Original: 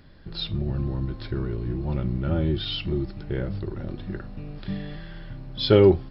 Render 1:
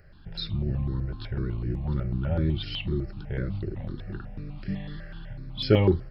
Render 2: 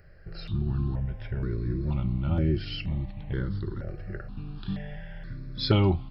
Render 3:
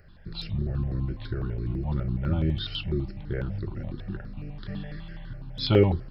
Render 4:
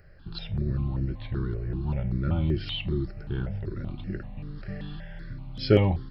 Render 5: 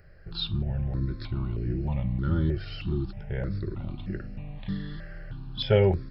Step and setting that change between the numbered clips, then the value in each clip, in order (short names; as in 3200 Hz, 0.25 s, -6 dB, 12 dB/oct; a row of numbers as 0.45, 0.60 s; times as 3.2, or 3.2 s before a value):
step phaser, rate: 8, 2.1, 12, 5.2, 3.2 Hz